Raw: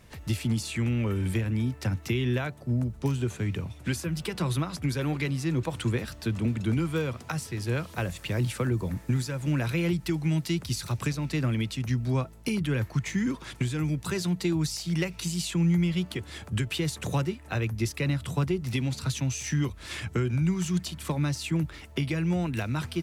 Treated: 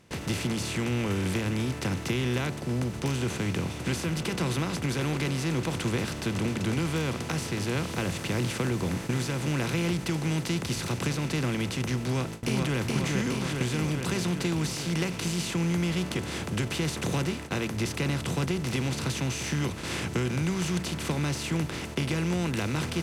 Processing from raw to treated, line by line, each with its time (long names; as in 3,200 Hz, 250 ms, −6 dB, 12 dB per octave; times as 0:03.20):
0:12.00–0:12.79: delay throw 420 ms, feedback 55%, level −3.5 dB
whole clip: compressor on every frequency bin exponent 0.4; hum removal 57.07 Hz, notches 2; noise gate with hold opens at −20 dBFS; level −6 dB